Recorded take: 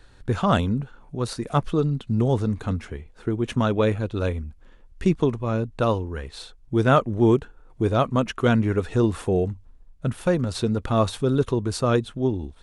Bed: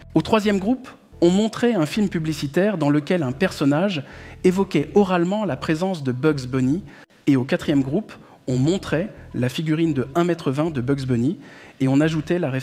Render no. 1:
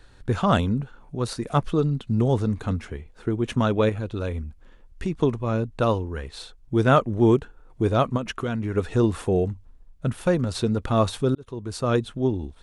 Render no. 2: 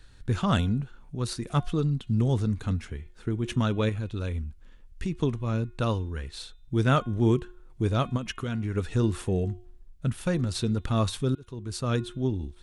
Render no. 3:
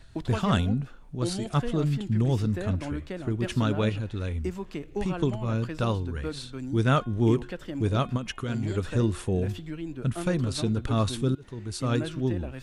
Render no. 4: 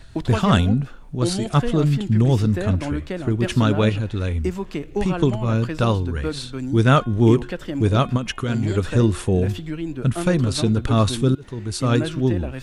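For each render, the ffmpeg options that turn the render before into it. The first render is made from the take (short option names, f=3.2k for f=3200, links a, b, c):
-filter_complex "[0:a]asettb=1/sr,asplit=3[a][b][c];[a]atrim=end=3.894[d];[b]atrim=start=3.89:end=5.21,asetpts=PTS-STARTPTS,afade=t=in:d=0.004:c=qsin,afade=t=out:st=1.316:d=0.004:c=qsin,acompressor=threshold=-25dB:ratio=2.5:attack=3.2:release=140:knee=1:detection=peak[e];[c]atrim=start=5.206[f];[d][e]acrossfade=d=0.004:c1=hsin:c2=qsin[g];[g][f]acrossfade=d=0.004:c1=qsin:c2=hsin,asplit=3[h][i][j];[h]afade=t=out:st=8.16:d=0.02[k];[i]acompressor=threshold=-23dB:ratio=6:attack=3.2:release=140:knee=1:detection=peak,afade=t=in:st=8.16:d=0.02,afade=t=out:st=8.75:d=0.02[l];[j]afade=t=in:st=8.75:d=0.02[m];[k][l][m]amix=inputs=3:normalize=0,asplit=2[n][o];[n]atrim=end=11.35,asetpts=PTS-STARTPTS,afade=t=out:st=11.346:d=0.004:c=hsin[p];[o]atrim=start=11.35,asetpts=PTS-STARTPTS,afade=t=in:d=0.68[q];[p][q]concat=n=2:v=0:a=1"
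-af "equalizer=f=640:w=0.51:g=-9,bandreject=f=358.8:t=h:w=4,bandreject=f=717.6:t=h:w=4,bandreject=f=1.0764k:t=h:w=4,bandreject=f=1.4352k:t=h:w=4,bandreject=f=1.794k:t=h:w=4,bandreject=f=2.1528k:t=h:w=4,bandreject=f=2.5116k:t=h:w=4,bandreject=f=2.8704k:t=h:w=4,bandreject=f=3.2292k:t=h:w=4,bandreject=f=3.588k:t=h:w=4,bandreject=f=3.9468k:t=h:w=4"
-filter_complex "[1:a]volume=-16dB[a];[0:a][a]amix=inputs=2:normalize=0"
-af "volume=7.5dB"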